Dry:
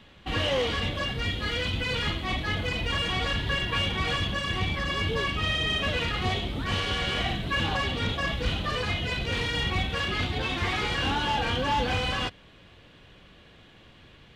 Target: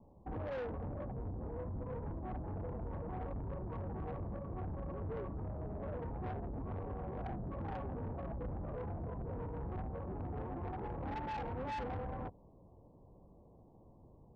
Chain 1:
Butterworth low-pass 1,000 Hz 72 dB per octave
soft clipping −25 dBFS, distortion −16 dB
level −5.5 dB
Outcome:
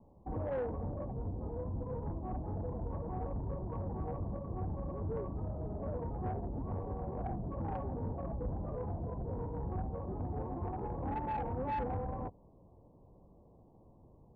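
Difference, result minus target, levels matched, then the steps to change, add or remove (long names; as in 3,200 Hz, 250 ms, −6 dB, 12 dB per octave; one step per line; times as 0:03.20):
soft clipping: distortion −7 dB
change: soft clipping −32 dBFS, distortion −9 dB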